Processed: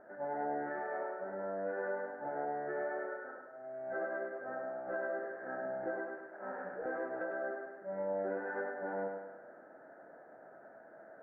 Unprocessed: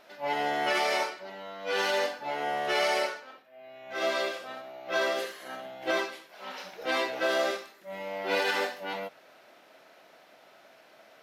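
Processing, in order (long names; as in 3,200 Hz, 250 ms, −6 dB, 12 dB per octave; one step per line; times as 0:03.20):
Chebyshev low-pass filter 1,700 Hz, order 6
parametric band 1,100 Hz −13 dB 0.45 octaves
downward compressor 10 to 1, threshold −39 dBFS, peak gain reduction 13.5 dB
feedback echo with a high-pass in the loop 103 ms, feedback 54%, high-pass 190 Hz, level −4 dB
level +2.5 dB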